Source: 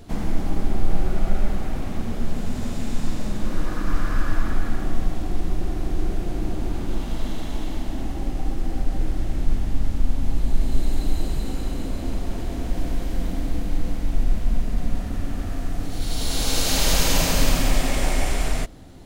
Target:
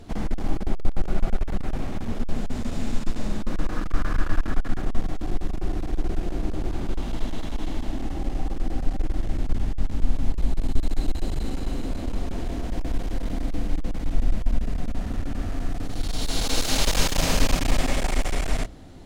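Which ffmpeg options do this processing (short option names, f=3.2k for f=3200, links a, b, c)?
-af "highshelf=f=12k:g=-11.5,bandreject=f=60:t=h:w=6,bandreject=f=120:t=h:w=6,bandreject=f=180:t=h:w=6,aeval=exprs='clip(val(0),-1,0.075)':c=same"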